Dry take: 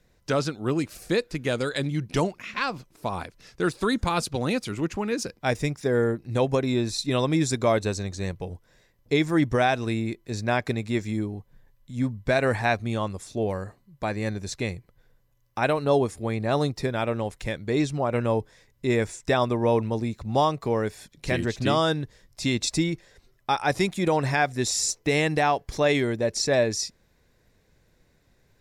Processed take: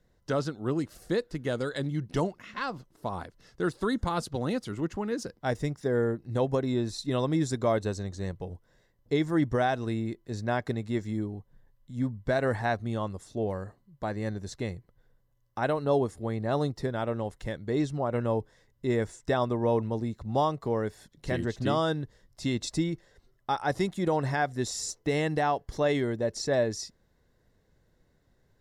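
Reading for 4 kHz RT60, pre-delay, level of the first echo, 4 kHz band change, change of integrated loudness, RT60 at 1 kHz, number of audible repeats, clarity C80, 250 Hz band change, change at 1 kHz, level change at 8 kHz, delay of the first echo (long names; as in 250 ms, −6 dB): no reverb audible, no reverb audible, no echo audible, −8.5 dB, −4.5 dB, no reverb audible, no echo audible, no reverb audible, −3.5 dB, −4.5 dB, −9.0 dB, no echo audible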